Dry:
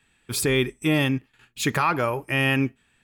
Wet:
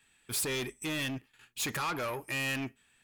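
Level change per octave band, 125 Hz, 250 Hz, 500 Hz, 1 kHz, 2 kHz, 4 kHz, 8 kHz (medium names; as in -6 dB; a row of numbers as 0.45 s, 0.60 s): -15.0 dB, -14.0 dB, -12.5 dB, -11.5 dB, -9.5 dB, -7.0 dB, -4.0 dB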